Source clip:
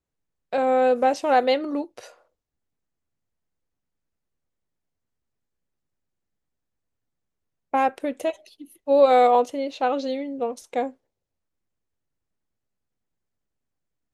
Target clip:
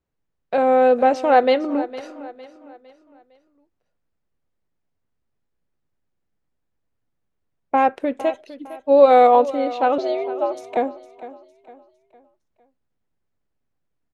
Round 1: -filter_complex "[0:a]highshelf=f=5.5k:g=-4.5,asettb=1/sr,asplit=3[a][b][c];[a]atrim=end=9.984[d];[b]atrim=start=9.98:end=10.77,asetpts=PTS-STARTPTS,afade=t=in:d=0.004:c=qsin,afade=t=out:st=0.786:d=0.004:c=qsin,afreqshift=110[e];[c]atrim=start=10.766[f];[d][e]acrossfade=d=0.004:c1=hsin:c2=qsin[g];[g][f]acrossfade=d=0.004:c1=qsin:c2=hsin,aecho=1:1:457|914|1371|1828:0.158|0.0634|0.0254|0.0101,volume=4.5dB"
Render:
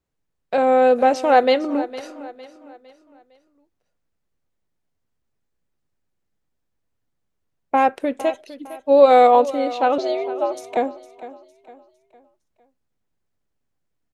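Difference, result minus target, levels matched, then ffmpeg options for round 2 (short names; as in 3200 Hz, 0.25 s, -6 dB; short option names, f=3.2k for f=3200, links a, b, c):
8000 Hz band +6.5 dB
-filter_complex "[0:a]highshelf=f=5.5k:g=-15.5,asettb=1/sr,asplit=3[a][b][c];[a]atrim=end=9.984[d];[b]atrim=start=9.98:end=10.77,asetpts=PTS-STARTPTS,afade=t=in:d=0.004:c=qsin,afade=t=out:st=0.786:d=0.004:c=qsin,afreqshift=110[e];[c]atrim=start=10.766[f];[d][e]acrossfade=d=0.004:c1=hsin:c2=qsin[g];[g][f]acrossfade=d=0.004:c1=qsin:c2=hsin,aecho=1:1:457|914|1371|1828:0.158|0.0634|0.0254|0.0101,volume=4.5dB"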